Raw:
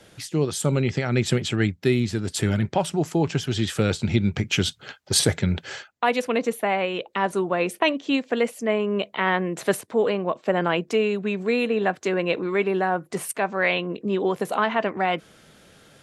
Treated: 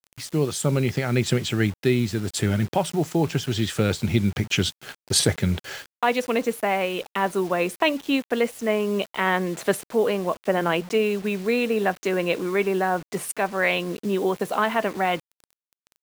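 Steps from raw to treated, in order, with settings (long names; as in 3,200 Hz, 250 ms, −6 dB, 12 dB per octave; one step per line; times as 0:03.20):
0:10.56–0:11.35: mains-hum notches 60/120/180/240 Hz
bit reduction 7 bits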